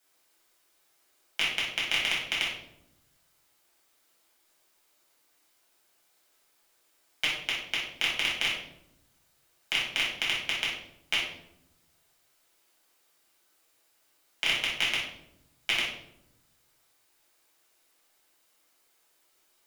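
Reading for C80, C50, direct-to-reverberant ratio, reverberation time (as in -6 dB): 6.5 dB, 2.5 dB, -7.5 dB, 0.80 s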